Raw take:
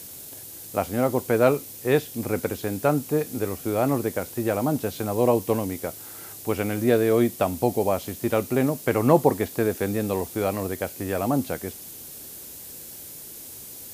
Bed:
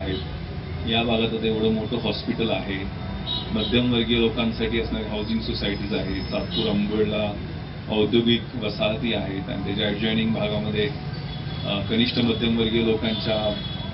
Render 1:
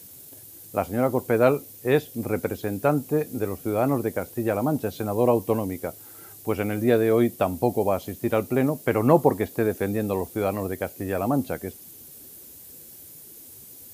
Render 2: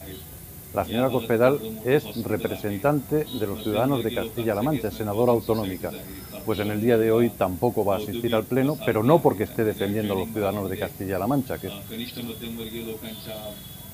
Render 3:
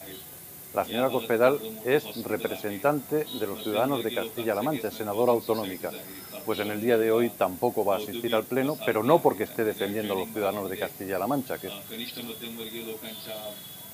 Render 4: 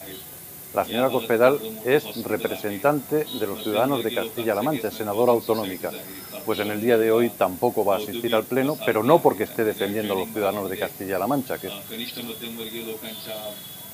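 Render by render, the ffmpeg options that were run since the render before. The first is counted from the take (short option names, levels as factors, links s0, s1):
-af "afftdn=nr=8:nf=-41"
-filter_complex "[1:a]volume=0.237[s0];[0:a][s0]amix=inputs=2:normalize=0"
-af "highpass=98,lowshelf=f=230:g=-12"
-af "volume=1.58"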